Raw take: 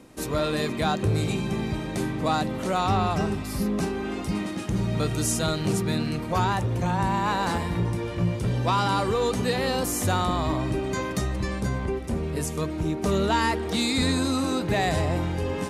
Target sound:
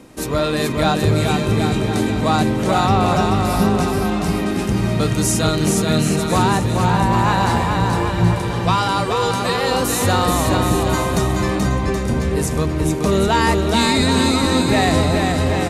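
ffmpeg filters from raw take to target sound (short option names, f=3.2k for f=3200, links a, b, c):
-filter_complex "[0:a]asettb=1/sr,asplit=3[a][b][c];[a]atrim=end=8.414[d];[b]atrim=start=8.41:end=9.71,asetpts=PTS-STARTPTS,afade=t=in:d=0.004:c=qsin,afade=t=out:st=1.296:d=0.004:c=qsin,lowshelf=f=340:g=-10[e];[c]atrim=start=9.706[f];[d][e]acrossfade=d=0.004:c1=hsin:c2=qsin[g];[g][f]acrossfade=d=0.004:c1=qsin:c2=hsin,aecho=1:1:430|774|1049|1269|1445:0.631|0.398|0.251|0.158|0.1,volume=6.5dB"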